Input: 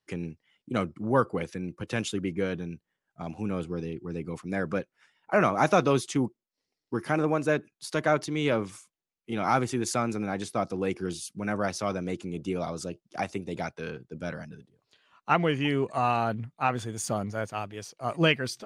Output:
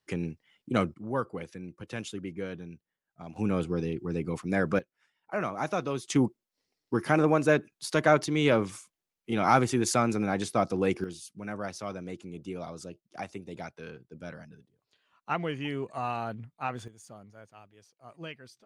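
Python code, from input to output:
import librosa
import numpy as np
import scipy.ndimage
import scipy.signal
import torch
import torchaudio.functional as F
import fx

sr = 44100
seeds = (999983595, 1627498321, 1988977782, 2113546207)

y = fx.gain(x, sr, db=fx.steps((0.0, 2.0), (0.94, -7.0), (3.36, 3.0), (4.79, -8.5), (6.1, 2.5), (11.04, -7.0), (16.88, -19.0)))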